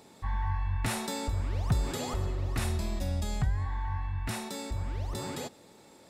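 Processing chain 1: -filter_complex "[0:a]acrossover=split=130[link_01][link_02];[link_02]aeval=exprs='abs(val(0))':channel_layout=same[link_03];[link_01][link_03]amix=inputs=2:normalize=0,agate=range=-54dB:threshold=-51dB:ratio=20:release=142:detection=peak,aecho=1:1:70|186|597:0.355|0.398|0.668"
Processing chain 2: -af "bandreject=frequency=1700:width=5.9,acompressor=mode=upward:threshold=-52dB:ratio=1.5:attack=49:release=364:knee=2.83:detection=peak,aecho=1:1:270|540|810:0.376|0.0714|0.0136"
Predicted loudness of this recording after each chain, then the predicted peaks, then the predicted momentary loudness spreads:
−34.0, −33.0 LKFS; −15.5, −17.0 dBFS; 6, 7 LU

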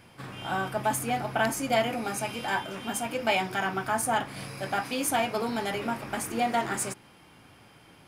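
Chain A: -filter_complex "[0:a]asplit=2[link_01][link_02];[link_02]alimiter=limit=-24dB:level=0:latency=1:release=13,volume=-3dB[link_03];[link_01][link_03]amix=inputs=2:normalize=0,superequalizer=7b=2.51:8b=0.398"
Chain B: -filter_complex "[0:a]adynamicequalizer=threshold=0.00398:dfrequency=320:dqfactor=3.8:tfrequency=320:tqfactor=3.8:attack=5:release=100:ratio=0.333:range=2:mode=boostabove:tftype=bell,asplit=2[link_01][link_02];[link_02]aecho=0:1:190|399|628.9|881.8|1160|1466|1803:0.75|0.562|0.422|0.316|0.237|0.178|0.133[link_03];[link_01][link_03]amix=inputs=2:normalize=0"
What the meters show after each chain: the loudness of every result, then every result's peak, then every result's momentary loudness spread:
−25.5, −26.0 LKFS; −10.5, −10.5 dBFS; 5, 8 LU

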